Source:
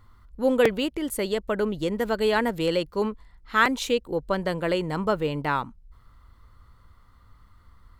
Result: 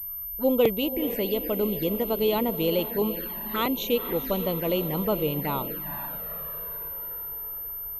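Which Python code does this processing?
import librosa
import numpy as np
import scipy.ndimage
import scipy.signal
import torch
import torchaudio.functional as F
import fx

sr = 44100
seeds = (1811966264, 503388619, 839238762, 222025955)

y = fx.echo_diffused(x, sr, ms=475, feedback_pct=57, wet_db=-11.0)
y = fx.dmg_tone(y, sr, hz=4900.0, level_db=-52.0, at=(1.19, 2.86), fade=0.02)
y = fx.env_flanger(y, sr, rest_ms=2.7, full_db=-23.0)
y = fx.pwm(y, sr, carrier_hz=13000.0)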